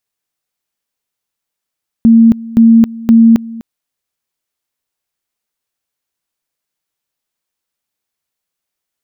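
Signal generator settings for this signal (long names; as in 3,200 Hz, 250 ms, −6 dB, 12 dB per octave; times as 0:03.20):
tone at two levels in turn 228 Hz −2 dBFS, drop 20.5 dB, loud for 0.27 s, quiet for 0.25 s, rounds 3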